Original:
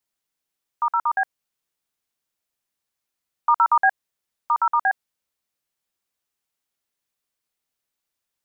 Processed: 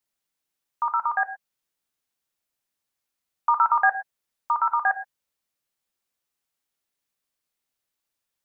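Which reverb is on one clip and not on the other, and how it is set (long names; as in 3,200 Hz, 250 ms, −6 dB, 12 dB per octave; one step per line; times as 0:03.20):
reverb whose tail is shaped and stops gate 140 ms flat, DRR 10.5 dB
level −1 dB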